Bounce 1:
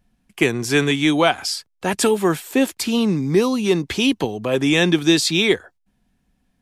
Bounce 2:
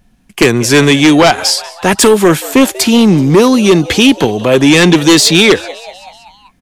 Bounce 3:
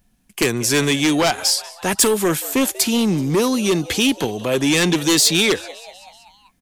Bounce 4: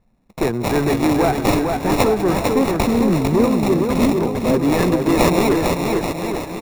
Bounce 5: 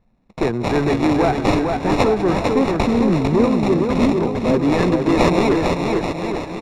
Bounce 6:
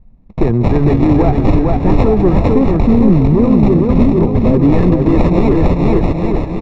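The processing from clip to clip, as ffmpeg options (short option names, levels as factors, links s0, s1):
-filter_complex "[0:a]equalizer=f=6400:t=o:w=0.21:g=2.5,asplit=6[s0][s1][s2][s3][s4][s5];[s1]adelay=190,afreqshift=120,volume=0.075[s6];[s2]adelay=380,afreqshift=240,volume=0.0457[s7];[s3]adelay=570,afreqshift=360,volume=0.0279[s8];[s4]adelay=760,afreqshift=480,volume=0.017[s9];[s5]adelay=950,afreqshift=600,volume=0.0104[s10];[s0][s6][s7][s8][s9][s10]amix=inputs=6:normalize=0,aeval=exprs='0.75*sin(PI/2*2.51*val(0)/0.75)':c=same,volume=1.12"
-af "crystalizer=i=1.5:c=0,volume=0.282"
-filter_complex "[0:a]acrossover=split=1500[s0][s1];[s1]acrusher=samples=28:mix=1:aa=0.000001[s2];[s0][s2]amix=inputs=2:normalize=0,aecho=1:1:450|832.5|1158|1434|1669:0.631|0.398|0.251|0.158|0.1"
-af "lowpass=5200"
-af "aemphasis=mode=reproduction:type=riaa,bandreject=f=1500:w=6.4,alimiter=limit=0.668:level=0:latency=1:release=91,volume=1.26"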